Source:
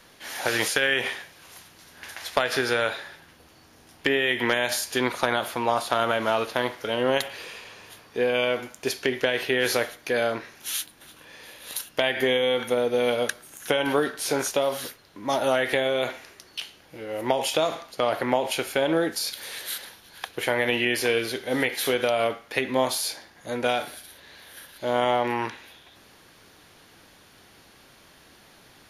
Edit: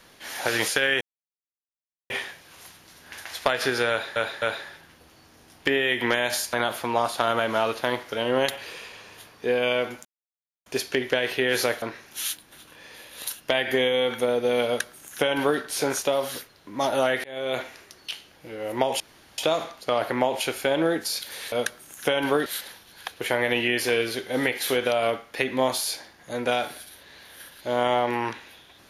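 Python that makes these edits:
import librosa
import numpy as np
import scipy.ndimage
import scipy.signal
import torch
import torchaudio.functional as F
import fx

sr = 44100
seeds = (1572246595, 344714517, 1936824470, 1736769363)

y = fx.edit(x, sr, fx.insert_silence(at_s=1.01, length_s=1.09),
    fx.repeat(start_s=2.81, length_s=0.26, count=3),
    fx.cut(start_s=4.92, length_s=0.33),
    fx.insert_silence(at_s=8.77, length_s=0.61),
    fx.cut(start_s=9.93, length_s=0.38),
    fx.duplicate(start_s=13.15, length_s=0.94, to_s=19.63),
    fx.fade_in_span(start_s=15.73, length_s=0.34),
    fx.insert_room_tone(at_s=17.49, length_s=0.38), tone=tone)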